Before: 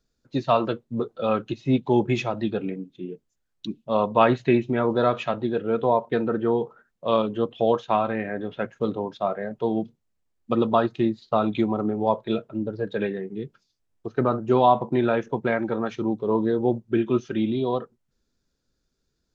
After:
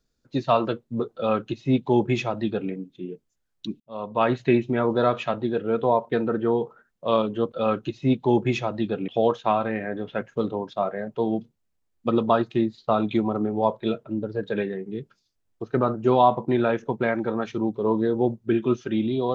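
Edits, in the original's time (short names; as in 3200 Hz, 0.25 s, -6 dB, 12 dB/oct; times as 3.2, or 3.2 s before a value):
1.15–2.71 copy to 7.52
3.8–4.47 fade in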